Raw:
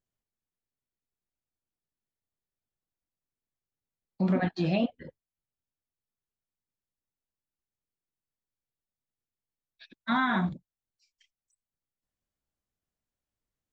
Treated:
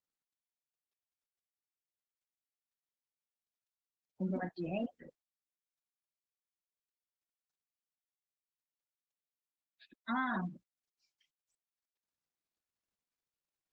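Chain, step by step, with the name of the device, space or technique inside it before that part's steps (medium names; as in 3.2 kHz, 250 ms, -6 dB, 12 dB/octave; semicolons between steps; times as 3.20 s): 4.30–4.96 s: dynamic bell 160 Hz, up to -3 dB, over -39 dBFS, Q 0.94; noise-suppressed video call (high-pass 170 Hz 24 dB/octave; spectral gate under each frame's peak -20 dB strong; trim -8 dB; Opus 12 kbps 48 kHz)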